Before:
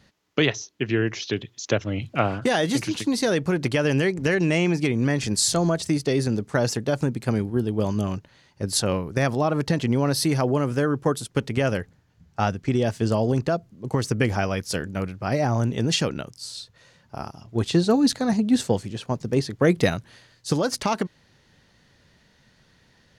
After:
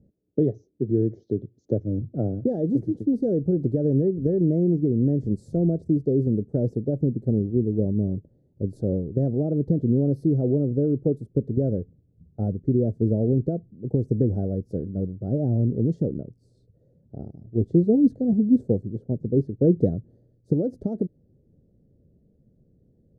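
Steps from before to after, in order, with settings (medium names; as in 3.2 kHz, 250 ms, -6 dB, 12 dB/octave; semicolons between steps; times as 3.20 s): inverse Chebyshev low-pass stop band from 980 Hz, stop band 40 dB; trim +1.5 dB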